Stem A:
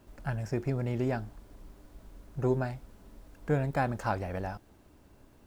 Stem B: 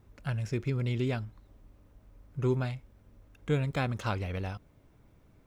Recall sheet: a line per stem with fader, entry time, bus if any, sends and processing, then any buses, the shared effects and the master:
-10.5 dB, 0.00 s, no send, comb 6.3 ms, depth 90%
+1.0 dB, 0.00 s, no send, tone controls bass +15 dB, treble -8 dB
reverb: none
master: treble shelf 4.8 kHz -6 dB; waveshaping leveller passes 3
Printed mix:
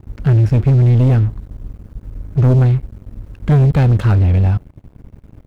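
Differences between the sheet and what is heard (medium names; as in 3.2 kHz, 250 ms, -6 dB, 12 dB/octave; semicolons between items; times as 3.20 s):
stem A: missing comb 6.3 ms, depth 90%; master: missing treble shelf 4.8 kHz -6 dB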